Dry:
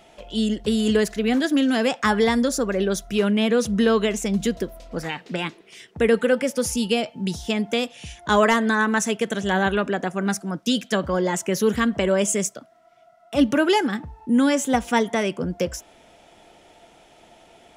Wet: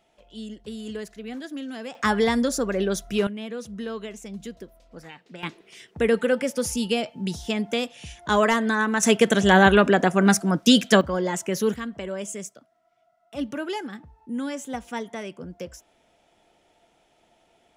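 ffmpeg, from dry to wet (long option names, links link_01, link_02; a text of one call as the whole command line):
ffmpeg -i in.wav -af "asetnsamples=nb_out_samples=441:pad=0,asendcmd='1.95 volume volume -2dB;3.27 volume volume -14dB;5.43 volume volume -2.5dB;9.03 volume volume 6dB;11.01 volume volume -3dB;11.74 volume volume -11.5dB',volume=-14.5dB" out.wav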